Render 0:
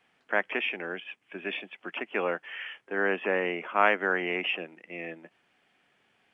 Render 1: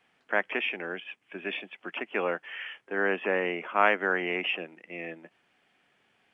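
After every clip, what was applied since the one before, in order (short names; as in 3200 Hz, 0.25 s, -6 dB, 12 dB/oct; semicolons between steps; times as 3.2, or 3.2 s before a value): nothing audible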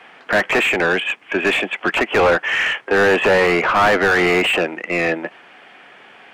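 overdrive pedal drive 34 dB, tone 1400 Hz, clips at -6 dBFS; gain +2 dB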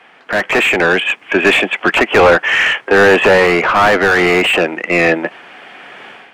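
AGC gain up to 12 dB; gain -1 dB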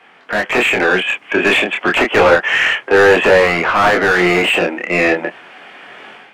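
chorus 0.33 Hz, depth 6.3 ms; gain +1.5 dB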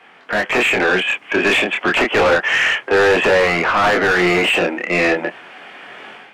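soft clip -9 dBFS, distortion -14 dB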